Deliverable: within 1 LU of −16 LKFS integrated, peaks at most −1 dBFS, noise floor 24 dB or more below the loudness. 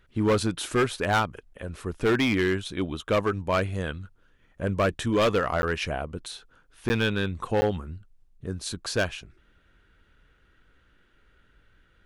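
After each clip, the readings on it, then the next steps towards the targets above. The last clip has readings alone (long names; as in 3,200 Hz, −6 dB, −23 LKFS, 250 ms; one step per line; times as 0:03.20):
share of clipped samples 1.4%; peaks flattened at −17.5 dBFS; number of dropouts 3; longest dropout 10 ms; integrated loudness −27.0 LKFS; sample peak −17.5 dBFS; target loudness −16.0 LKFS
→ clipped peaks rebuilt −17.5 dBFS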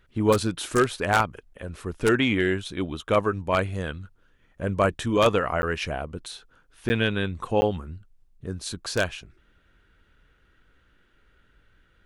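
share of clipped samples 0.0%; number of dropouts 3; longest dropout 10 ms
→ repair the gap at 0:05.62/0:06.89/0:07.61, 10 ms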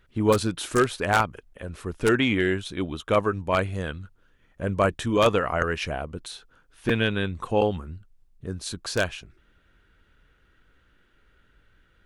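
number of dropouts 0; integrated loudness −25.5 LKFS; sample peak −6.0 dBFS; target loudness −16.0 LKFS
→ level +9.5 dB
brickwall limiter −1 dBFS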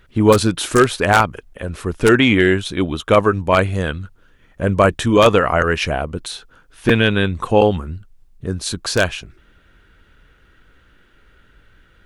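integrated loudness −16.5 LKFS; sample peak −1.0 dBFS; background noise floor −53 dBFS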